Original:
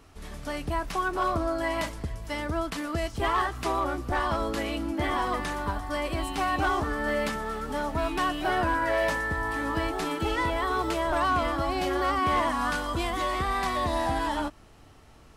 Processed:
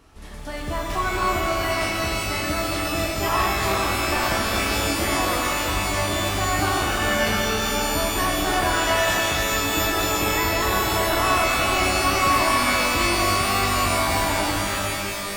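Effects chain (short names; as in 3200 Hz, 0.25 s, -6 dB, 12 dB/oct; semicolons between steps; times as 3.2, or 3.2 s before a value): shimmer reverb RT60 3.3 s, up +12 st, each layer -2 dB, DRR -1.5 dB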